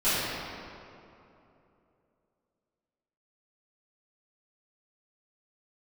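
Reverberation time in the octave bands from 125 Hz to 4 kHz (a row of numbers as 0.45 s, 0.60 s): 3.2 s, 3.1 s, 3.1 s, 2.7 s, 2.1 s, 1.6 s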